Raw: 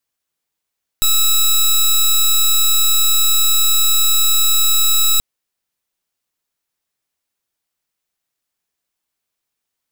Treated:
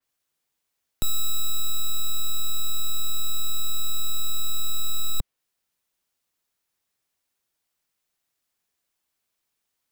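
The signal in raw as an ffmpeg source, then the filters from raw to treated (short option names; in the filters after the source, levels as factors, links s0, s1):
-f lavfi -i "aevalsrc='0.237*(2*lt(mod(3890*t,1),0.15)-1)':d=4.18:s=44100"
-filter_complex "[0:a]acrossover=split=130|1000[s0][s1][s2];[s2]alimiter=limit=0.141:level=0:latency=1:release=22[s3];[s0][s1][s3]amix=inputs=3:normalize=0,asoftclip=type=tanh:threshold=0.188,adynamicequalizer=threshold=0.00562:dfrequency=4100:dqfactor=0.7:tfrequency=4100:tqfactor=0.7:attack=5:release=100:ratio=0.375:range=2:mode=cutabove:tftype=highshelf"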